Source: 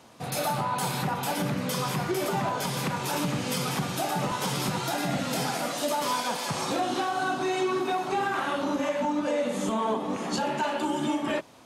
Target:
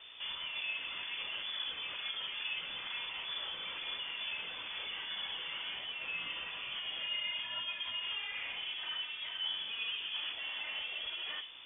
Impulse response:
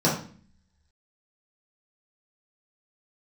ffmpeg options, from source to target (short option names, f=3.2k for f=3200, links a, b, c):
-filter_complex "[0:a]tiltshelf=f=970:g=-3,alimiter=level_in=4.5dB:limit=-24dB:level=0:latency=1:release=102,volume=-4.5dB,aeval=exprs='val(0)+0.00282*(sin(2*PI*60*n/s)+sin(2*PI*2*60*n/s)/2+sin(2*PI*3*60*n/s)/3+sin(2*PI*4*60*n/s)/4+sin(2*PI*5*60*n/s)/5)':c=same,asoftclip=type=hard:threshold=-36.5dB,flanger=delay=1.1:depth=8.3:regen=44:speed=1.1:shape=triangular,asplit=2[a][b];[1:a]atrim=start_sample=2205,lowshelf=f=240:g=-12[c];[b][c]afir=irnorm=-1:irlink=0,volume=-16.5dB[d];[a][d]amix=inputs=2:normalize=0,lowpass=f=3.1k:t=q:w=0.5098,lowpass=f=3.1k:t=q:w=0.6013,lowpass=f=3.1k:t=q:w=0.9,lowpass=f=3.1k:t=q:w=2.563,afreqshift=-3600"